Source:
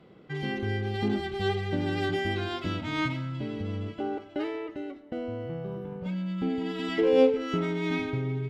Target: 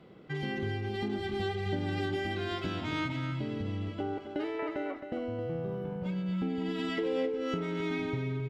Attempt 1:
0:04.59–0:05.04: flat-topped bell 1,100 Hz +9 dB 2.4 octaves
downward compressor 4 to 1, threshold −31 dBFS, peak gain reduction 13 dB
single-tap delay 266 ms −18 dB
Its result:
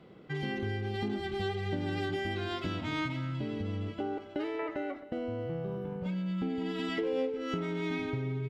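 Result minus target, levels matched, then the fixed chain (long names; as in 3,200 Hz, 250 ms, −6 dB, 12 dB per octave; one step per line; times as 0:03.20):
echo-to-direct −9.5 dB
0:04.59–0:05.04: flat-topped bell 1,100 Hz +9 dB 2.4 octaves
downward compressor 4 to 1, threshold −31 dBFS, peak gain reduction 13 dB
single-tap delay 266 ms −8.5 dB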